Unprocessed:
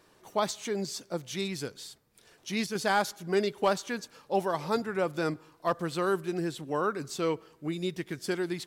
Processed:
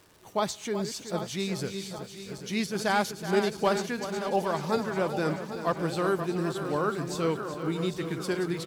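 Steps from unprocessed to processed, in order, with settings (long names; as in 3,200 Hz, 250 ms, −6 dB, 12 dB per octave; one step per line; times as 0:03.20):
feedback delay that plays each chunk backwards 397 ms, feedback 69%, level −9 dB
parametric band 74 Hz +9 dB 1.9 octaves
single-tap delay 375 ms −11.5 dB
surface crackle 410 per second −46 dBFS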